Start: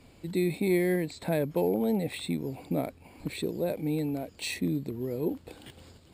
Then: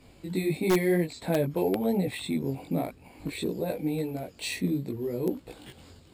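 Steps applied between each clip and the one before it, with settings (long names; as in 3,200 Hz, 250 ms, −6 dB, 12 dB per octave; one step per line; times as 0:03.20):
multi-voice chorus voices 2, 1 Hz, delay 19 ms, depth 3 ms
in parallel at −4 dB: wrap-around overflow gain 19 dB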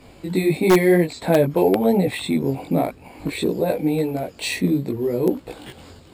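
parametric band 820 Hz +4.5 dB 2.9 octaves
level +6.5 dB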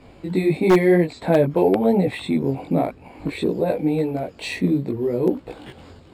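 low-pass filter 2,700 Hz 6 dB per octave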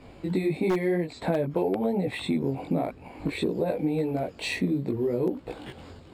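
downward compressor 6 to 1, threshold −21 dBFS, peak gain reduction 10.5 dB
level −1.5 dB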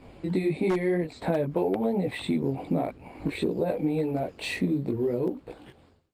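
fade-out on the ending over 1.05 s
Opus 24 kbit/s 48,000 Hz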